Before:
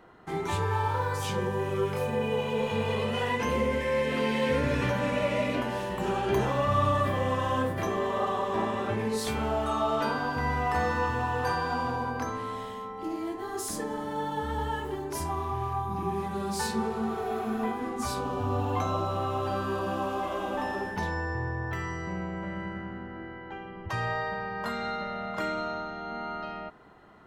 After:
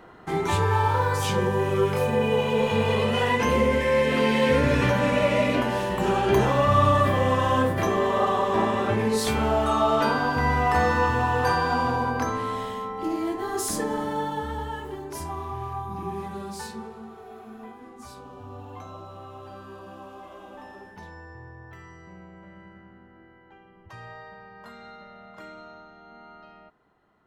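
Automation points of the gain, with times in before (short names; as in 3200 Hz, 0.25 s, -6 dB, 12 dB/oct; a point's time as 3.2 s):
14.03 s +6 dB
14.67 s -1.5 dB
16.29 s -1.5 dB
17.11 s -12 dB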